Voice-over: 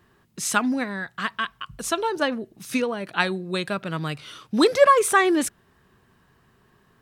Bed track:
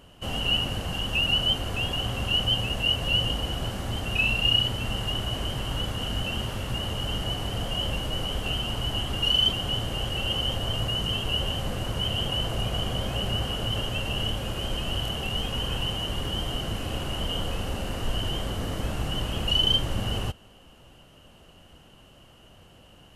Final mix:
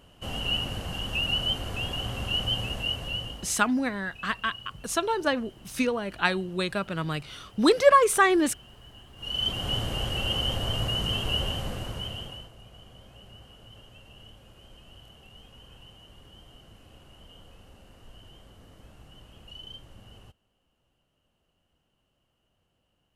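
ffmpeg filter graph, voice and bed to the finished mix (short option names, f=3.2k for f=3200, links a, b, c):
-filter_complex "[0:a]adelay=3050,volume=-2dB[a];[1:a]volume=17.5dB,afade=t=out:st=2.67:d=0.96:silence=0.125893,afade=t=in:st=9.16:d=0.56:silence=0.0891251,afade=t=out:st=11.36:d=1.15:silence=0.0841395[b];[a][b]amix=inputs=2:normalize=0"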